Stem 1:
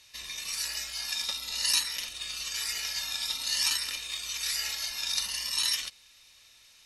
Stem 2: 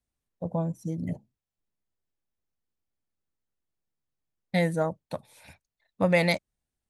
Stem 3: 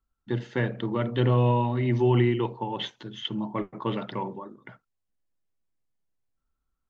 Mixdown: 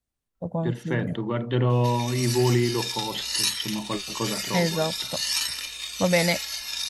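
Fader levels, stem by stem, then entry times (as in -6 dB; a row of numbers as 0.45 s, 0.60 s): +1.5 dB, +1.0 dB, 0.0 dB; 1.70 s, 0.00 s, 0.35 s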